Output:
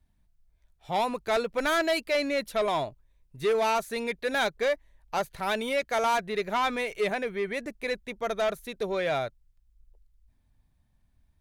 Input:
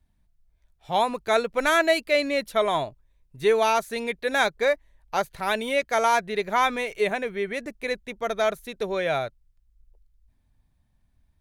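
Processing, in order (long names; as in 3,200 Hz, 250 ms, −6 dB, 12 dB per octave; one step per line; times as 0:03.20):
soft clipping −19 dBFS, distortion −13 dB
level −1 dB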